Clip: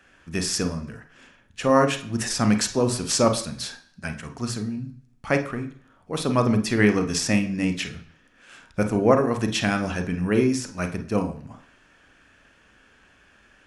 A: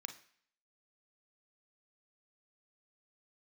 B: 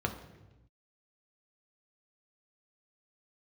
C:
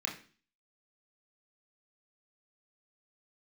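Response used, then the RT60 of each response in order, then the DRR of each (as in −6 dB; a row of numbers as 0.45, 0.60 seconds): A; 0.55, 1.0, 0.40 seconds; 7.0, 3.5, −1.0 decibels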